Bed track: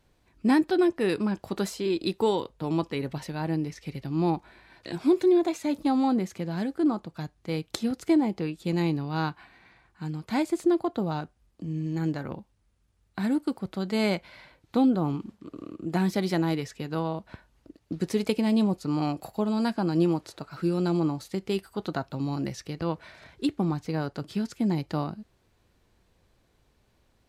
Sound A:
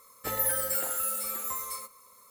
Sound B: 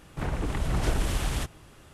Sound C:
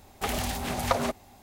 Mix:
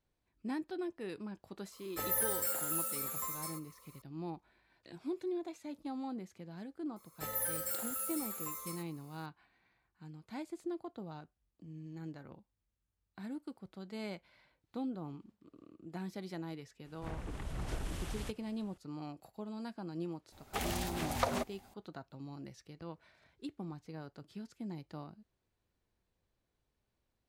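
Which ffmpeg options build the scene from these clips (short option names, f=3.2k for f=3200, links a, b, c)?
-filter_complex "[1:a]asplit=2[a][b];[0:a]volume=-17dB[c];[a]atrim=end=2.3,asetpts=PTS-STARTPTS,volume=-5.5dB,afade=t=in:d=0.004:c=hsin,afade=t=out:st=2.296:d=0.004:c=hsin,adelay=1720[d];[b]atrim=end=2.3,asetpts=PTS-STARTPTS,volume=-8.5dB,afade=t=in:d=0.004:c=hsin,afade=t=out:st=2.296:d=0.004:c=hsin,adelay=6960[e];[2:a]atrim=end=1.93,asetpts=PTS-STARTPTS,volume=-13dB,afade=t=in:d=0.004:c=hsin,afade=t=out:st=1.926:d=0.004:c=hsin,adelay=16850[f];[3:a]atrim=end=1.42,asetpts=PTS-STARTPTS,volume=-7dB,afade=t=in:d=0.004:c=hsin,afade=t=out:st=1.416:d=0.004:c=hsin,adelay=20320[g];[c][d][e][f][g]amix=inputs=5:normalize=0"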